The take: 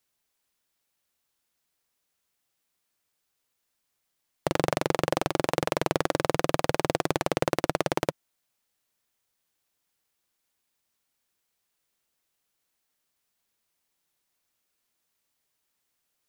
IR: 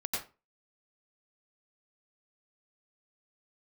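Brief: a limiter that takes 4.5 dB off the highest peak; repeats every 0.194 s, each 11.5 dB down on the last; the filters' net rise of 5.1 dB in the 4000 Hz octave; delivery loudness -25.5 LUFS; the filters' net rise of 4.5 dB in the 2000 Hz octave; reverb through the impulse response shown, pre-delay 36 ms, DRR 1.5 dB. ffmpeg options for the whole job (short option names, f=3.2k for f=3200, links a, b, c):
-filter_complex "[0:a]equalizer=f=2k:t=o:g=4.5,equalizer=f=4k:t=o:g=5,alimiter=limit=-5.5dB:level=0:latency=1,aecho=1:1:194|388|582:0.266|0.0718|0.0194,asplit=2[a][b];[1:a]atrim=start_sample=2205,adelay=36[c];[b][c]afir=irnorm=-1:irlink=0,volume=-6dB[d];[a][d]amix=inputs=2:normalize=0,volume=1dB"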